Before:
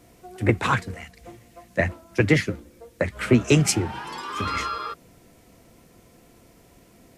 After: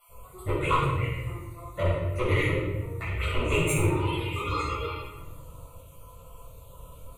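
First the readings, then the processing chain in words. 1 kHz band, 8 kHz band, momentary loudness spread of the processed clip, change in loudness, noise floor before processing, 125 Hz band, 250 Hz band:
-1.5 dB, -8.5 dB, 19 LU, -4.5 dB, -55 dBFS, -2.0 dB, -8.0 dB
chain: random spectral dropouts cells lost 36%; in parallel at 0 dB: compressor, threshold -37 dBFS, peak gain reduction 22 dB; on the sum: envelope phaser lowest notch 290 Hz, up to 4900 Hz, full sweep at -21 dBFS; soft clip -22 dBFS, distortion -5 dB; fixed phaser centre 1100 Hz, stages 8; shoebox room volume 630 m³, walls mixed, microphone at 6.8 m; gain -7 dB

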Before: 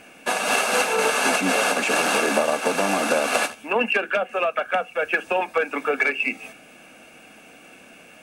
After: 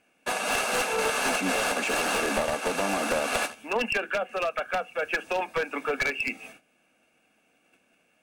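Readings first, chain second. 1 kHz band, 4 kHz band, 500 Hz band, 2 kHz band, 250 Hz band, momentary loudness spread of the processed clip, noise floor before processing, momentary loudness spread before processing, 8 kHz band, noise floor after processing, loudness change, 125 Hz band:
-5.5 dB, -4.5 dB, -5.5 dB, -5.5 dB, -5.5 dB, 5 LU, -48 dBFS, 5 LU, -5.0 dB, -68 dBFS, -5.5 dB, -2.5 dB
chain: one-sided fold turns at -16 dBFS; gate -44 dBFS, range -15 dB; gain -5 dB

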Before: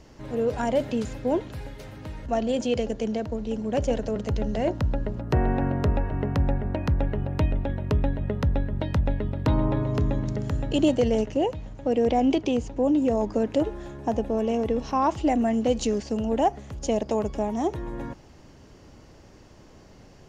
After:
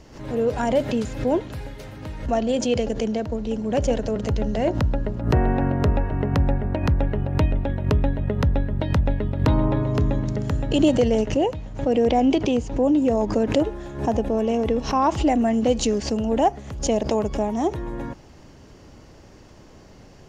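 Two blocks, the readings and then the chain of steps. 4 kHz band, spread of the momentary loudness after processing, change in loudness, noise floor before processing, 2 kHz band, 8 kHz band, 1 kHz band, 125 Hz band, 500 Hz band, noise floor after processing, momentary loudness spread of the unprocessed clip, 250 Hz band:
+5.0 dB, 7 LU, +3.5 dB, -51 dBFS, +4.0 dB, +6.5 dB, +3.0 dB, +4.0 dB, +3.0 dB, -47 dBFS, 7 LU, +3.5 dB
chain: backwards sustainer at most 110 dB/s; gain +3 dB

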